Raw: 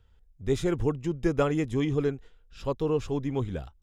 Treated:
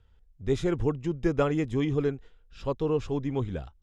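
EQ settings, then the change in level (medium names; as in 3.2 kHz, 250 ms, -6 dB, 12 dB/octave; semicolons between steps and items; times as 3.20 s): distance through air 51 m; 0.0 dB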